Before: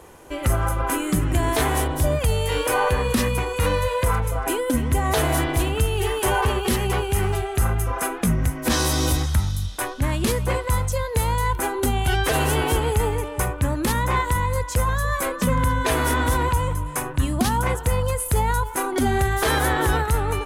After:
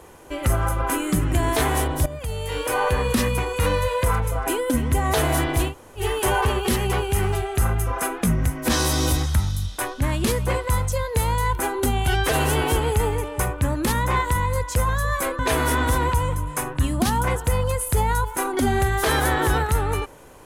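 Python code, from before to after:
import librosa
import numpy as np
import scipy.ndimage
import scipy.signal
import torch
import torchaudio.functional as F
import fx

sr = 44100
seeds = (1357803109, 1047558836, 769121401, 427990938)

y = fx.edit(x, sr, fx.fade_in_from(start_s=2.06, length_s=0.92, floor_db=-14.0),
    fx.room_tone_fill(start_s=5.7, length_s=0.3, crossfade_s=0.1),
    fx.cut(start_s=15.39, length_s=0.39), tone=tone)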